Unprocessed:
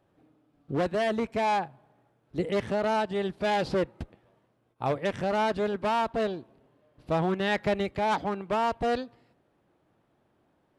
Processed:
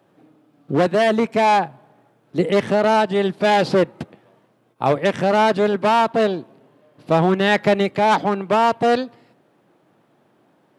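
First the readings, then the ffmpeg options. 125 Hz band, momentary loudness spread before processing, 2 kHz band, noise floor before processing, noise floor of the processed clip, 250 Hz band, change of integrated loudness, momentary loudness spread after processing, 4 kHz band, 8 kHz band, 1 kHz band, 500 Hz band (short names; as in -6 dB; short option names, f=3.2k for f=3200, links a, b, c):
+9.5 dB, 7 LU, +10.5 dB, -71 dBFS, -61 dBFS, +10.5 dB, +10.5 dB, 8 LU, +10.5 dB, n/a, +10.5 dB, +10.5 dB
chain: -af "highpass=f=130:w=0.5412,highpass=f=130:w=1.3066,acontrast=68,volume=4dB"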